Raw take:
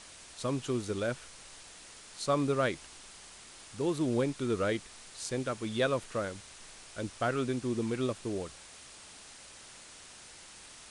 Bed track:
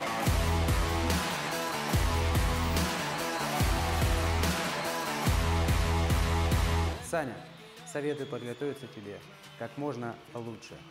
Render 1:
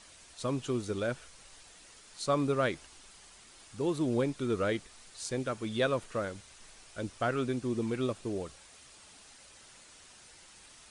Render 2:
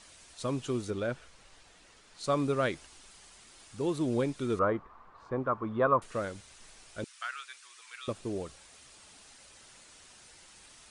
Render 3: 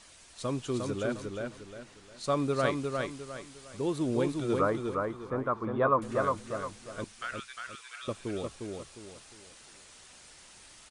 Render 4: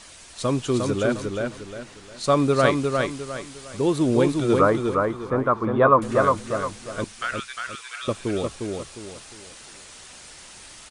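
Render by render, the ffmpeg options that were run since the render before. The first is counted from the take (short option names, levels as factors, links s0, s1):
-af "afftdn=nr=6:nf=-52"
-filter_complex "[0:a]asettb=1/sr,asplit=3[s0][s1][s2];[s0]atrim=end=0.904[s3];[s1]atrim=start=0.9:end=2.24,asetpts=PTS-STARTPTS,afade=t=in:d=0.004:c=qsin,afade=t=out:st=1.336:d=0.004:c=qsin,lowpass=f=3300:p=1[s4];[s2]atrim=start=2.236[s5];[s3][s4]acrossfade=d=0.004:c1=hsin:c2=qsin[s6];[s6][s5]acrossfade=d=0.004:c1=qsin:c2=hsin,asettb=1/sr,asplit=3[s7][s8][s9];[s7]atrim=end=4.594[s10];[s8]atrim=start=4.59:end=6.02,asetpts=PTS-STARTPTS,afade=t=in:d=0.004:c=qsin,afade=t=out:st=1.426:d=0.004:c=qsin,lowpass=f=1100:t=q:w=5.6[s11];[s9]atrim=start=6.016[s12];[s10][s11]acrossfade=d=0.004:c1=hsin:c2=qsin[s13];[s13][s12]acrossfade=d=0.004:c1=qsin:c2=hsin,asettb=1/sr,asplit=3[s14][s15][s16];[s14]atrim=end=7.044[s17];[s15]atrim=start=7.04:end=8.08,asetpts=PTS-STARTPTS,afade=t=in:d=0.004:c=qsin,afade=t=out:st=1.036:d=0.004:c=qsin,highpass=f=1300:w=0.5412,highpass=f=1300:w=1.3066[s18];[s16]atrim=start=8.076[s19];[s17][s18]acrossfade=d=0.004:c1=hsin:c2=qsin[s20];[s20][s19]acrossfade=d=0.004:c1=qsin:c2=hsin"
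-af "aecho=1:1:355|710|1065|1420:0.631|0.215|0.0729|0.0248"
-af "volume=2.99"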